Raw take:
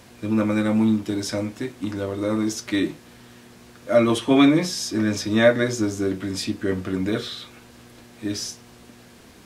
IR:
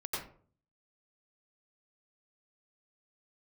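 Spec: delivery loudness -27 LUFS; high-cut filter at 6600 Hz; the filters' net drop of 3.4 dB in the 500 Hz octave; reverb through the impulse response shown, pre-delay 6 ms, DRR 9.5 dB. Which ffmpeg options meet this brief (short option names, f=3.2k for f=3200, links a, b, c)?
-filter_complex "[0:a]lowpass=6.6k,equalizer=f=500:t=o:g=-4.5,asplit=2[a][b];[1:a]atrim=start_sample=2205,adelay=6[c];[b][c]afir=irnorm=-1:irlink=0,volume=-13dB[d];[a][d]amix=inputs=2:normalize=0,volume=-3dB"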